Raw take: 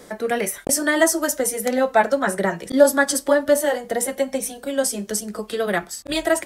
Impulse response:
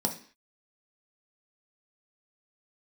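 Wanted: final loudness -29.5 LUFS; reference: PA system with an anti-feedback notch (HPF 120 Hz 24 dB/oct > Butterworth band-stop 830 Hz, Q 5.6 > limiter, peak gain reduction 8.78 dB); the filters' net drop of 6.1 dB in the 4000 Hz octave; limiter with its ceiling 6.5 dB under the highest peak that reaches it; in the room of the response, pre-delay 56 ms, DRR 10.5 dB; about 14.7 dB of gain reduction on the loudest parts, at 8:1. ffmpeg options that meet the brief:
-filter_complex "[0:a]equalizer=f=4k:t=o:g=-8.5,acompressor=threshold=-23dB:ratio=8,alimiter=limit=-19dB:level=0:latency=1,asplit=2[a][b];[1:a]atrim=start_sample=2205,adelay=56[c];[b][c]afir=irnorm=-1:irlink=0,volume=-17dB[d];[a][d]amix=inputs=2:normalize=0,highpass=f=120:w=0.5412,highpass=f=120:w=1.3066,asuperstop=centerf=830:order=8:qfactor=5.6,volume=3.5dB,alimiter=limit=-21dB:level=0:latency=1"

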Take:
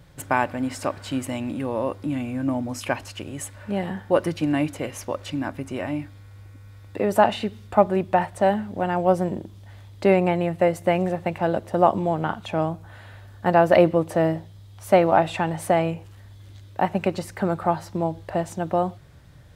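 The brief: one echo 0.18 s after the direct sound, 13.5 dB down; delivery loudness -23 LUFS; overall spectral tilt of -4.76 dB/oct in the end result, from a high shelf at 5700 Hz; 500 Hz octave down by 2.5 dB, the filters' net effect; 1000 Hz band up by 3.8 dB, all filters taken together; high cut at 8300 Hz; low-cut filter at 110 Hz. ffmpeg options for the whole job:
-af "highpass=110,lowpass=8.3k,equalizer=f=500:t=o:g=-6.5,equalizer=f=1k:t=o:g=8,highshelf=f=5.7k:g=7,aecho=1:1:180:0.211"

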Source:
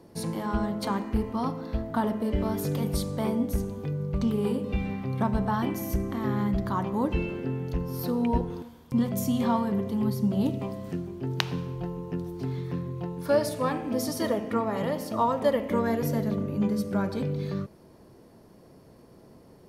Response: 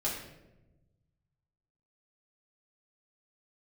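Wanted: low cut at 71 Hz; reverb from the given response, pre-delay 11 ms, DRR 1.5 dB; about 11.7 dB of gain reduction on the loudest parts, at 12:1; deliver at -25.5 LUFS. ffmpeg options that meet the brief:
-filter_complex "[0:a]highpass=71,acompressor=threshold=-30dB:ratio=12,asplit=2[a][b];[1:a]atrim=start_sample=2205,adelay=11[c];[b][c]afir=irnorm=-1:irlink=0,volume=-6.5dB[d];[a][d]amix=inputs=2:normalize=0,volume=6.5dB"

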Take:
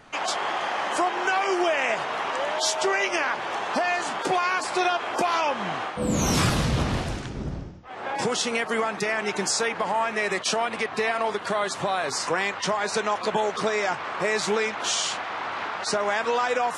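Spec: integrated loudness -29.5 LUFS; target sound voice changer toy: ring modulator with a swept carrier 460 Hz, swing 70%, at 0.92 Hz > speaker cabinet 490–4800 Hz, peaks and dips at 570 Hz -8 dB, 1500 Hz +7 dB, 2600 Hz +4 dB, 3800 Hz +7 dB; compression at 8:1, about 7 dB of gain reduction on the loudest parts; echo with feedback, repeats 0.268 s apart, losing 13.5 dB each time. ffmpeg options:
-af "acompressor=threshold=-26dB:ratio=8,aecho=1:1:268|536:0.211|0.0444,aeval=exprs='val(0)*sin(2*PI*460*n/s+460*0.7/0.92*sin(2*PI*0.92*n/s))':c=same,highpass=490,equalizer=f=570:t=q:w=4:g=-8,equalizer=f=1.5k:t=q:w=4:g=7,equalizer=f=2.6k:t=q:w=4:g=4,equalizer=f=3.8k:t=q:w=4:g=7,lowpass=f=4.8k:w=0.5412,lowpass=f=4.8k:w=1.3066,volume=1.5dB"

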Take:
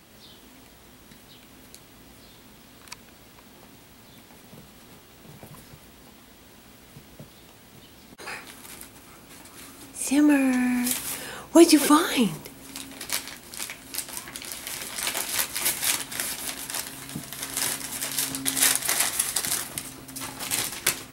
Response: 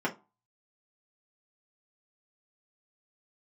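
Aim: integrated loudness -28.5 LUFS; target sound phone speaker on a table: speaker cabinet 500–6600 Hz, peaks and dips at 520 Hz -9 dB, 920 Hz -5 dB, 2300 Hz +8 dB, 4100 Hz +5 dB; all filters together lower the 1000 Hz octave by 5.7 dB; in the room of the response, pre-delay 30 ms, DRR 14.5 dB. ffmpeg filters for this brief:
-filter_complex "[0:a]equalizer=f=1k:t=o:g=-5,asplit=2[a][b];[1:a]atrim=start_sample=2205,adelay=30[c];[b][c]afir=irnorm=-1:irlink=0,volume=-23dB[d];[a][d]amix=inputs=2:normalize=0,highpass=f=500:w=0.5412,highpass=f=500:w=1.3066,equalizer=f=520:t=q:w=4:g=-9,equalizer=f=920:t=q:w=4:g=-5,equalizer=f=2.3k:t=q:w=4:g=8,equalizer=f=4.1k:t=q:w=4:g=5,lowpass=f=6.6k:w=0.5412,lowpass=f=6.6k:w=1.3066"

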